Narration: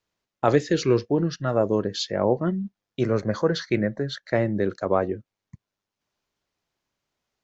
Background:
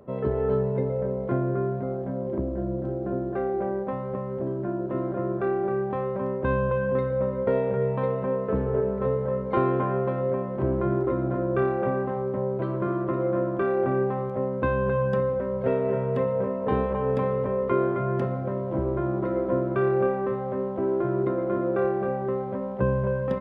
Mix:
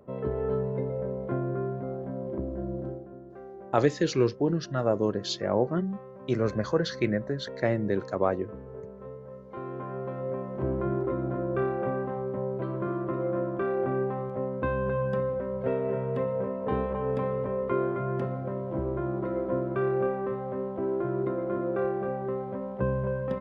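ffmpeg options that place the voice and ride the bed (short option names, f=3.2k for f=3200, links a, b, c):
-filter_complex "[0:a]adelay=3300,volume=-3.5dB[a];[1:a]volume=8.5dB,afade=t=out:st=2.86:d=0.21:silence=0.237137,afade=t=in:st=9.54:d=1.13:silence=0.223872[b];[a][b]amix=inputs=2:normalize=0"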